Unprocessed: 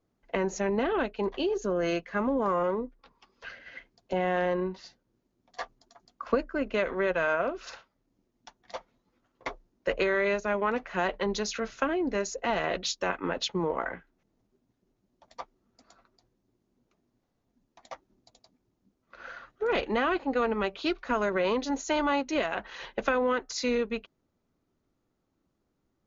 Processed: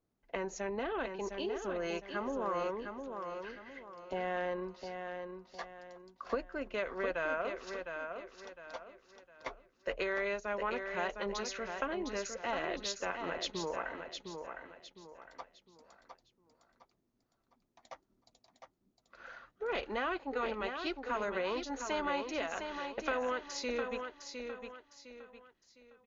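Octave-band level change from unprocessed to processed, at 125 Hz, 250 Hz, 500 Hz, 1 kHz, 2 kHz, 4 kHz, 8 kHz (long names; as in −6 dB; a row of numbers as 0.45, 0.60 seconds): −11.5 dB, −10.5 dB, −8.0 dB, −6.5 dB, −6.0 dB, −6.0 dB, can't be measured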